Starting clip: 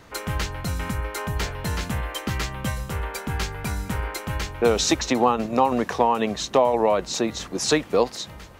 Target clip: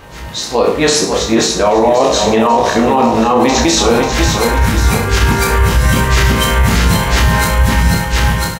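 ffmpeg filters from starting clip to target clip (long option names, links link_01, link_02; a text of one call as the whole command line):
ffmpeg -i in.wav -filter_complex "[0:a]areverse,asplit=2[link_01][link_02];[link_02]adelay=18,volume=-6dB[link_03];[link_01][link_03]amix=inputs=2:normalize=0,asplit=2[link_04][link_05];[link_05]aecho=0:1:30|63|99.3|139.2|183.2:0.631|0.398|0.251|0.158|0.1[link_06];[link_04][link_06]amix=inputs=2:normalize=0,dynaudnorm=framelen=200:gausssize=13:maxgain=5.5dB,asplit=2[link_07][link_08];[link_08]aecho=0:1:540|1080|1620|2160|2700:0.355|0.163|0.0751|0.0345|0.0159[link_09];[link_07][link_09]amix=inputs=2:normalize=0,alimiter=level_in=10.5dB:limit=-1dB:release=50:level=0:latency=1,volume=-1dB" out.wav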